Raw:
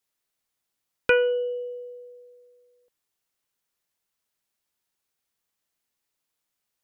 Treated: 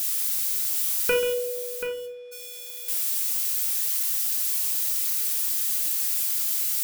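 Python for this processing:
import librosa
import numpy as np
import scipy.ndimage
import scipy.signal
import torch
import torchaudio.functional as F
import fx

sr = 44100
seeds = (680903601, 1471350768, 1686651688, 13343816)

y = x + 0.5 * 10.0 ** (-19.5 / 20.0) * np.diff(np.sign(x), prepend=np.sign(x[:1]))
y = fx.lowpass(y, sr, hz=1400.0, slope=12, at=(1.32, 2.31), fade=0.02)
y = fx.echo_multitap(y, sr, ms=(135, 733), db=(-12.0, -9.5))
y = fx.room_shoebox(y, sr, seeds[0], volume_m3=380.0, walls='furnished', distance_m=1.6)
y = F.gain(torch.from_numpy(y), -4.5).numpy()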